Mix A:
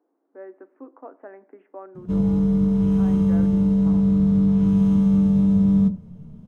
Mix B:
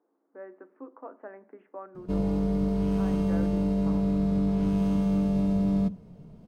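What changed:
speech: send on; background: send -11.0 dB

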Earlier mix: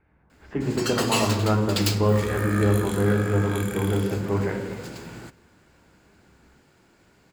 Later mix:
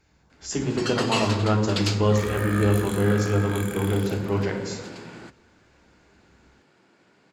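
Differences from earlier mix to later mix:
speech: remove LPF 2200 Hz 24 dB/oct; first sound: add BPF 170–5700 Hz

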